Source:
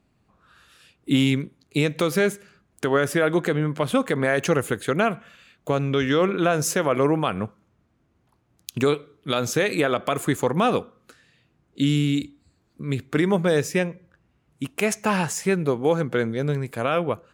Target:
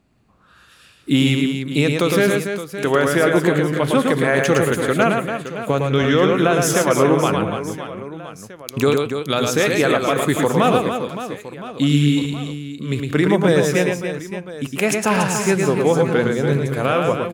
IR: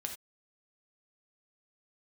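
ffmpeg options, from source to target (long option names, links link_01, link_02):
-af "aecho=1:1:110|286|567.6|1018|1739:0.631|0.398|0.251|0.158|0.1,volume=3.5dB"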